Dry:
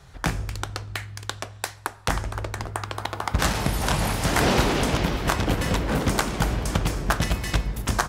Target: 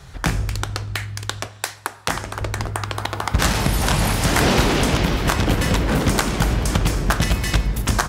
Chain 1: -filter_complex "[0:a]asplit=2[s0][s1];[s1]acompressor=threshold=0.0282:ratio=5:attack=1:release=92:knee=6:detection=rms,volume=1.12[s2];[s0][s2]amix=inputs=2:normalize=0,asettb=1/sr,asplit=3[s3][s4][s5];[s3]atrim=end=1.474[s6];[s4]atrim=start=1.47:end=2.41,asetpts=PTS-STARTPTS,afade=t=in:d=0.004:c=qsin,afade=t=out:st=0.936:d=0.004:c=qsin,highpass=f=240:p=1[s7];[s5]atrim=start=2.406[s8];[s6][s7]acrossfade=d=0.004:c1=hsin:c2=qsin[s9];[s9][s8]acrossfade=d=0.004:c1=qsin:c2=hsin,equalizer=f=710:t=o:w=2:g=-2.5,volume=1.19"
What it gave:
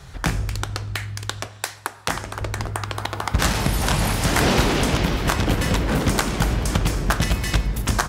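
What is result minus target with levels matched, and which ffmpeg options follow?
compression: peak gain reduction +6.5 dB
-filter_complex "[0:a]asplit=2[s0][s1];[s1]acompressor=threshold=0.0708:ratio=5:attack=1:release=92:knee=6:detection=rms,volume=1.12[s2];[s0][s2]amix=inputs=2:normalize=0,asettb=1/sr,asplit=3[s3][s4][s5];[s3]atrim=end=1.474[s6];[s4]atrim=start=1.47:end=2.41,asetpts=PTS-STARTPTS,afade=t=in:d=0.004:c=qsin,afade=t=out:st=0.936:d=0.004:c=qsin,highpass=f=240:p=1[s7];[s5]atrim=start=2.406[s8];[s6][s7]acrossfade=d=0.004:c1=hsin:c2=qsin[s9];[s9][s8]acrossfade=d=0.004:c1=qsin:c2=hsin,equalizer=f=710:t=o:w=2:g=-2.5,volume=1.19"

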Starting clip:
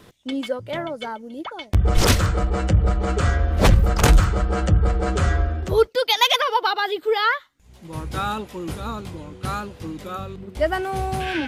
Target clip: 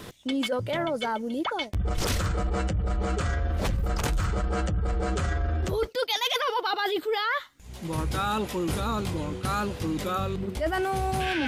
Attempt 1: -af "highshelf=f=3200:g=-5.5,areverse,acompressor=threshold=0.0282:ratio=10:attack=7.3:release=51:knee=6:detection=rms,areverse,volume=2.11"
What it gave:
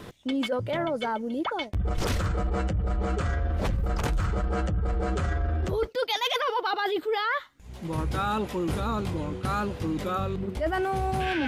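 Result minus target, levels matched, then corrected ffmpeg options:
8 kHz band -5.5 dB
-af "highshelf=f=3200:g=2.5,areverse,acompressor=threshold=0.0282:ratio=10:attack=7.3:release=51:knee=6:detection=rms,areverse,volume=2.11"

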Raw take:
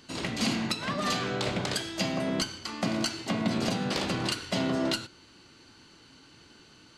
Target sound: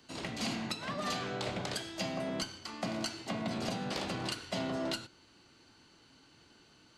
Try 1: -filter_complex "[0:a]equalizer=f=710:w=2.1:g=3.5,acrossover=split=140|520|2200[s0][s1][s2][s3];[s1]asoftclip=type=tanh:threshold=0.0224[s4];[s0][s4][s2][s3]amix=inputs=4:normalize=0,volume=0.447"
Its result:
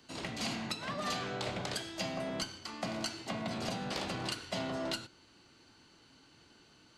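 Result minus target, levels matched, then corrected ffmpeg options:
saturation: distortion +7 dB
-filter_complex "[0:a]equalizer=f=710:w=2.1:g=3.5,acrossover=split=140|520|2200[s0][s1][s2][s3];[s1]asoftclip=type=tanh:threshold=0.0501[s4];[s0][s4][s2][s3]amix=inputs=4:normalize=0,volume=0.447"

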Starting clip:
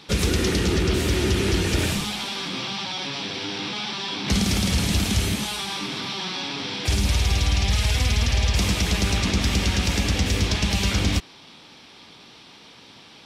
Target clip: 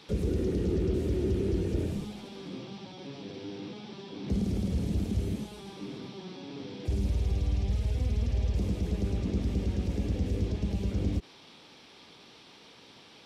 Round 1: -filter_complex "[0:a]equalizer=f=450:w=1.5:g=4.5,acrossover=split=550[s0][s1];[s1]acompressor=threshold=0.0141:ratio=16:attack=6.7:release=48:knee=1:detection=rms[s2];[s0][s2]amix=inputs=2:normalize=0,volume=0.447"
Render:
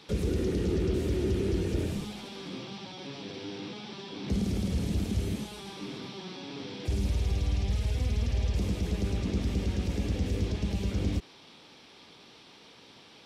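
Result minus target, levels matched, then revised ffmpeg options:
compression: peak gain reduction -5.5 dB
-filter_complex "[0:a]equalizer=f=450:w=1.5:g=4.5,acrossover=split=550[s0][s1];[s1]acompressor=threshold=0.00708:ratio=16:attack=6.7:release=48:knee=1:detection=rms[s2];[s0][s2]amix=inputs=2:normalize=0,volume=0.447"

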